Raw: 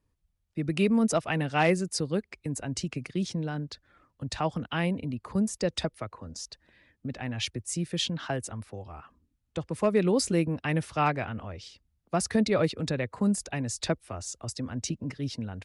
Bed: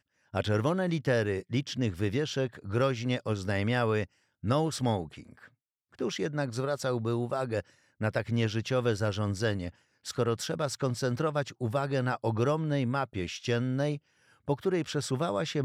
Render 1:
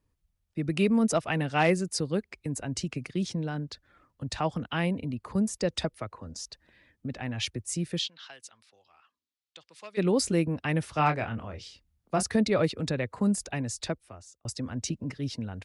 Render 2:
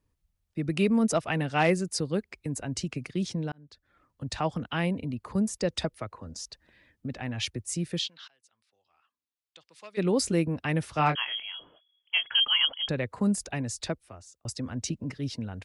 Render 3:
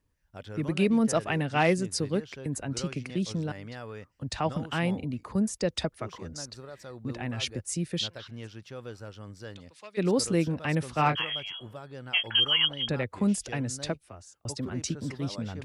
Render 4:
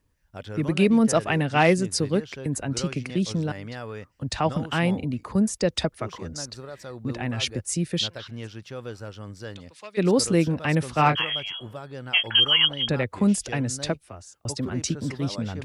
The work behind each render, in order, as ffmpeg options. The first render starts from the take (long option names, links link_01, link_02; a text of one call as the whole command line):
ffmpeg -i in.wav -filter_complex "[0:a]asplit=3[link_01][link_02][link_03];[link_01]afade=type=out:start_time=7.98:duration=0.02[link_04];[link_02]bandpass=frequency=4100:width_type=q:width=1.5,afade=type=in:start_time=7.98:duration=0.02,afade=type=out:start_time=9.97:duration=0.02[link_05];[link_03]afade=type=in:start_time=9.97:duration=0.02[link_06];[link_04][link_05][link_06]amix=inputs=3:normalize=0,asettb=1/sr,asplit=3[link_07][link_08][link_09];[link_07]atrim=end=10.934[link_10];[link_08]atrim=start=10.93:end=12.23,asetpts=PTS-STARTPTS,afade=type=in:duration=0.004:curve=qsin,afade=type=out:start_time=1.296:duration=0.004:curve=qsin,asplit=2[link_11][link_12];[link_12]adelay=26,volume=-8dB[link_13];[link_11][link_13]amix=inputs=2:normalize=0,atrim=end_sample=57330[link_14];[link_09]atrim=start=12.226[link_15];[link_10][link_14]acrossfade=duration=0.004:curve1=hsin:curve2=qsin[link_16];[link_16][link_15]acrossfade=duration=0.004:curve1=qsin:curve2=hsin,asplit=2[link_17][link_18];[link_17]atrim=end=14.45,asetpts=PTS-STARTPTS,afade=type=out:start_time=13.59:duration=0.86[link_19];[link_18]atrim=start=14.45,asetpts=PTS-STARTPTS,afade=type=in:duration=0.004:curve=hsin[link_20];[link_19][link_20]concat=n=2:v=0:a=1" out.wav
ffmpeg -i in.wav -filter_complex "[0:a]asettb=1/sr,asplit=3[link_01][link_02][link_03];[link_01]atrim=end=11.154[link_04];[link_02]atrim=start=11.15:end=12.89,asetpts=PTS-STARTPTS,afade=type=in:duration=0.004:curve=qsin,afade=type=out:start_time=1.736:duration=0.004:curve=qsin,lowpass=frequency=2900:width_type=q:width=0.5098,lowpass=frequency=2900:width_type=q:width=0.6013,lowpass=frequency=2900:width_type=q:width=0.9,lowpass=frequency=2900:width_type=q:width=2.563,afreqshift=-3400[link_05];[link_03]atrim=start=12.886[link_06];[link_04][link_05]acrossfade=duration=0.004:curve1=hsin:curve2=qsin[link_07];[link_07][link_06]acrossfade=duration=0.004:curve1=qsin:curve2=hsin,asplit=3[link_08][link_09][link_10];[link_08]atrim=end=3.52,asetpts=PTS-STARTPTS,afade=type=out:start_time=3.516:duration=0.004:curve=hsin[link_11];[link_09]atrim=start=3.52:end=8.28,asetpts=PTS-STARTPTS,afade=type=in:duration=0.76,afade=type=out:start_time=4.756:duration=0.004:curve=hsin:silence=0.0668344[link_12];[link_10]atrim=start=8.28,asetpts=PTS-STARTPTS,afade=type=in:duration=1.96:silence=0.0668344[link_13];[link_11][link_12][link_13]concat=n=3:v=0:a=1" out.wav
ffmpeg -i in.wav -i bed.wav -filter_complex "[1:a]volume=-13.5dB[link_01];[0:a][link_01]amix=inputs=2:normalize=0" out.wav
ffmpeg -i in.wav -af "volume=5dB" out.wav